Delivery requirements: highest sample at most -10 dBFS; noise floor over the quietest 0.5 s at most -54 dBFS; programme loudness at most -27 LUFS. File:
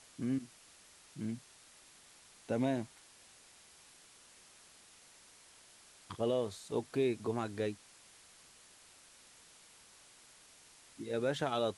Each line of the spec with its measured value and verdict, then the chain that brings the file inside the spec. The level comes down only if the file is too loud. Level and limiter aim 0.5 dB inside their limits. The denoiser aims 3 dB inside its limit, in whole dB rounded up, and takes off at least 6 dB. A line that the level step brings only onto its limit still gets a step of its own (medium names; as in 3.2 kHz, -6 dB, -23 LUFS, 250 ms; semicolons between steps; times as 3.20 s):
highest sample -21.0 dBFS: pass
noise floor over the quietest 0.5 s -61 dBFS: pass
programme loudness -37.0 LUFS: pass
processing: none needed